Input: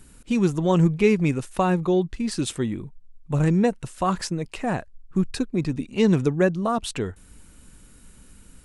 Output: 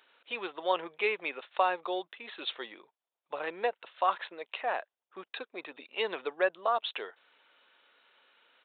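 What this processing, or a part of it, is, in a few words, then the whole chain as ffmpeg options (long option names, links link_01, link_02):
musical greeting card: -af "aresample=8000,aresample=44100,highpass=frequency=550:width=0.5412,highpass=frequency=550:width=1.3066,equalizer=frequency=3800:width_type=o:width=0.58:gain=5,volume=-2.5dB"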